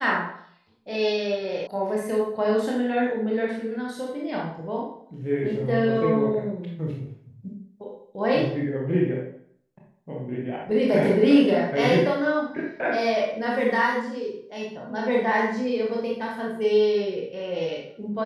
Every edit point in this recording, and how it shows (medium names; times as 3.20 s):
1.67 s: sound stops dead